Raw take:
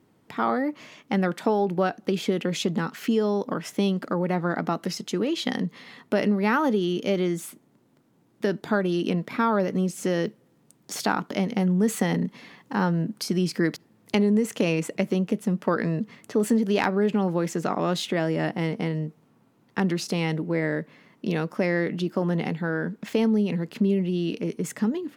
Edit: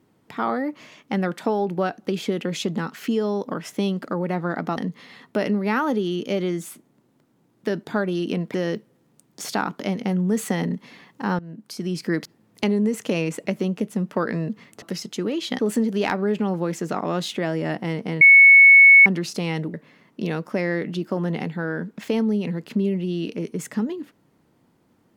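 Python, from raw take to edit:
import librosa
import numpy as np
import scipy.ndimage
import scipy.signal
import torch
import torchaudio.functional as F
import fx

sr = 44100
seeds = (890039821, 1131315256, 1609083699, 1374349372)

y = fx.edit(x, sr, fx.move(start_s=4.77, length_s=0.77, to_s=16.33),
    fx.cut(start_s=9.31, length_s=0.74),
    fx.fade_in_from(start_s=12.9, length_s=0.75, floor_db=-18.5),
    fx.bleep(start_s=18.95, length_s=0.85, hz=2210.0, db=-6.5),
    fx.cut(start_s=20.48, length_s=0.31), tone=tone)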